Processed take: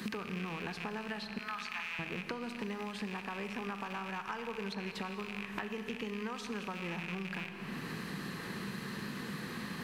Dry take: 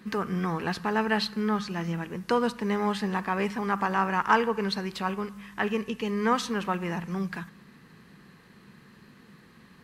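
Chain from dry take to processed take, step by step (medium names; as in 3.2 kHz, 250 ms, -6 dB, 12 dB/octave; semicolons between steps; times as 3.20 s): rattle on loud lows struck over -45 dBFS, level -22 dBFS; 1.38–1.99 s: high-pass 1 kHz 24 dB/octave; compression, threshold -41 dBFS, peak gain reduction 22.5 dB; Schroeder reverb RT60 2.2 s, combs from 26 ms, DRR 8.5 dB; three bands compressed up and down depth 100%; trim +2 dB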